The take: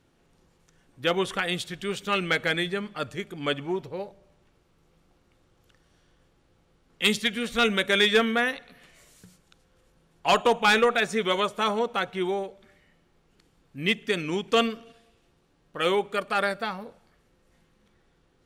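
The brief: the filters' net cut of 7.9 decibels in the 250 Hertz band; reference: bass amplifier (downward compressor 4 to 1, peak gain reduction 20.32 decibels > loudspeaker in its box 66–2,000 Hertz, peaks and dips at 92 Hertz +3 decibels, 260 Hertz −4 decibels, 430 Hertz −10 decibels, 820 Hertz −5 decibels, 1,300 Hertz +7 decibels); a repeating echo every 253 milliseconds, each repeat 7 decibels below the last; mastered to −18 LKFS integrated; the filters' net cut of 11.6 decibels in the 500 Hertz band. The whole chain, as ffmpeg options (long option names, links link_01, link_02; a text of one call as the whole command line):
ffmpeg -i in.wav -af "equalizer=frequency=250:width_type=o:gain=-6.5,equalizer=frequency=500:width_type=o:gain=-6,aecho=1:1:253|506|759|1012|1265:0.447|0.201|0.0905|0.0407|0.0183,acompressor=threshold=-42dB:ratio=4,highpass=frequency=66:width=0.5412,highpass=frequency=66:width=1.3066,equalizer=frequency=92:width_type=q:width=4:gain=3,equalizer=frequency=260:width_type=q:width=4:gain=-4,equalizer=frequency=430:width_type=q:width=4:gain=-10,equalizer=frequency=820:width_type=q:width=4:gain=-5,equalizer=frequency=1300:width_type=q:width=4:gain=7,lowpass=frequency=2000:width=0.5412,lowpass=frequency=2000:width=1.3066,volume=26dB" out.wav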